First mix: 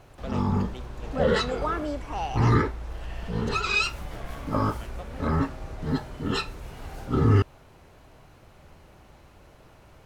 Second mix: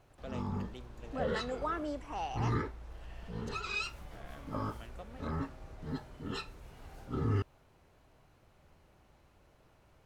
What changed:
speech −6.5 dB
background −12.0 dB

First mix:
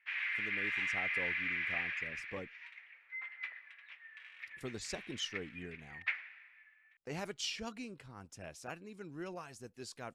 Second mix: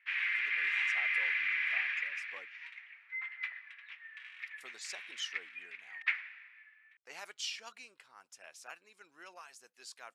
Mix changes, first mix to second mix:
background +4.0 dB
master: add high-pass filter 1,000 Hz 12 dB per octave

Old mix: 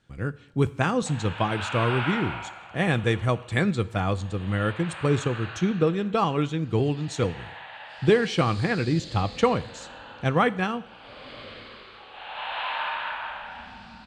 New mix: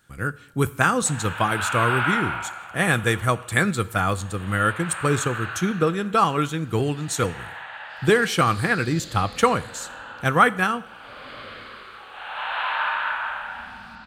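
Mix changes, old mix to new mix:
speech: remove high-frequency loss of the air 130 metres
master: add parametric band 1,400 Hz +9.5 dB 0.83 octaves

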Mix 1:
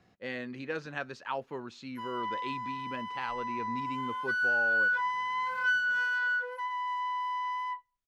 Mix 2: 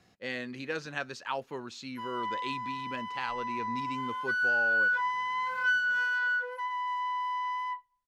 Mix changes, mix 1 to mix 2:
speech: add high-shelf EQ 4,000 Hz +12 dB
background: send on

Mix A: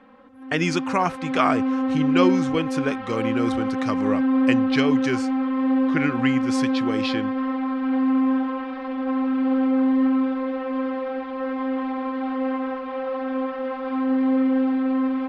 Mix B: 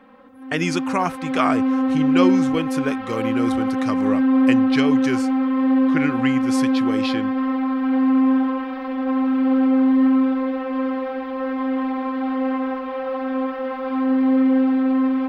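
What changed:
background: send +6.5 dB
master: remove low-pass filter 7,500 Hz 12 dB per octave

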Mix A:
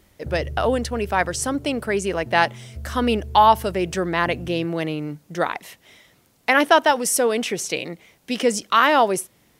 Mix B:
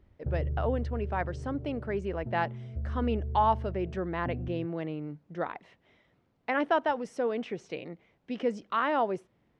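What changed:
speech −8.0 dB
master: add head-to-tape spacing loss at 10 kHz 35 dB

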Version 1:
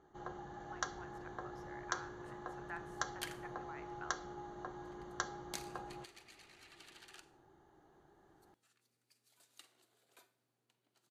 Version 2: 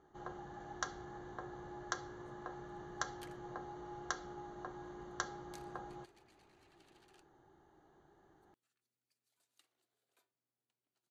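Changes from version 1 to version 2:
speech: muted
second sound −11.0 dB
reverb: off

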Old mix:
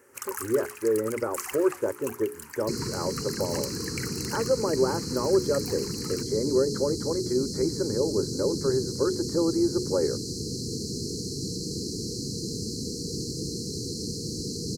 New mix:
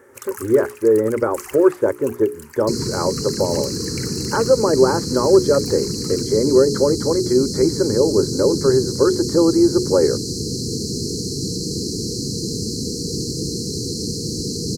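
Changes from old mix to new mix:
speech +10.0 dB
second sound +8.0 dB

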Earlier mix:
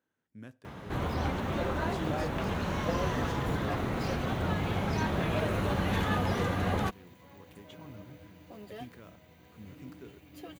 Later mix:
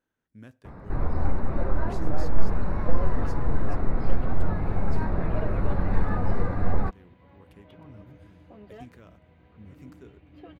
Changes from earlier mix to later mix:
first sound: add moving average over 14 samples
second sound: add high-frequency loss of the air 370 metres
master: remove high-pass filter 94 Hz 12 dB per octave

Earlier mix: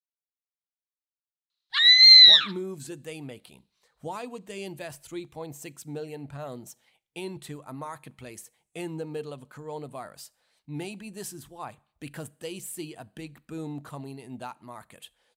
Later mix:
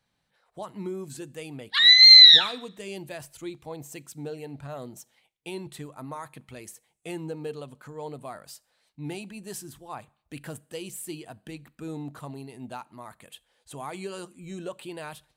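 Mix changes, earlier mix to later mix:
speech: entry −1.70 s
background: send on

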